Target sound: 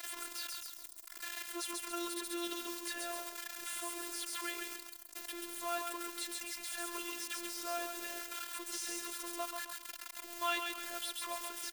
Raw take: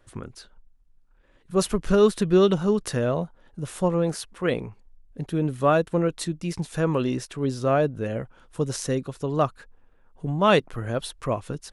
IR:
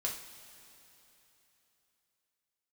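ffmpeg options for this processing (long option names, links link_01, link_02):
-filter_complex "[0:a]aeval=exprs='val(0)+0.5*0.0447*sgn(val(0))':channel_layout=same,bandreject=frequency=62.83:width_type=h:width=4,bandreject=frequency=125.66:width_type=h:width=4,bandreject=frequency=188.49:width_type=h:width=4,asplit=5[link_01][link_02][link_03][link_04][link_05];[link_02]adelay=135,afreqshift=-50,volume=-6dB[link_06];[link_03]adelay=270,afreqshift=-100,volume=-15.6dB[link_07];[link_04]adelay=405,afreqshift=-150,volume=-25.3dB[link_08];[link_05]adelay=540,afreqshift=-200,volume=-34.9dB[link_09];[link_01][link_06][link_07][link_08][link_09]amix=inputs=5:normalize=0,acompressor=threshold=-28dB:ratio=1.5,aderivative,afftfilt=real='hypot(re,im)*cos(PI*b)':imag='0':win_size=512:overlap=0.75,afftdn=noise_reduction=17:noise_floor=-68,acrossover=split=2900[link_10][link_11];[link_11]alimiter=level_in=12dB:limit=-24dB:level=0:latency=1:release=234,volume=-12dB[link_12];[link_10][link_12]amix=inputs=2:normalize=0,agate=range=-33dB:threshold=-57dB:ratio=3:detection=peak,equalizer=frequency=110:width=1.2:gain=-9.5,volume=8.5dB"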